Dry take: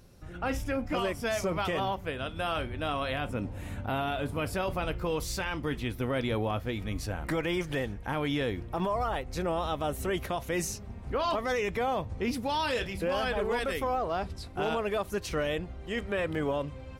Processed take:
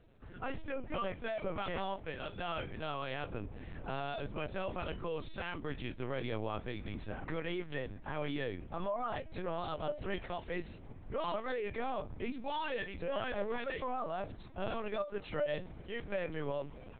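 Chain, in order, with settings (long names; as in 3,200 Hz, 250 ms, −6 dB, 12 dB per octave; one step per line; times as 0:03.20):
tuned comb filter 600 Hz, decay 0.27 s, harmonics all, mix 70%
linear-prediction vocoder at 8 kHz pitch kept
level +2.5 dB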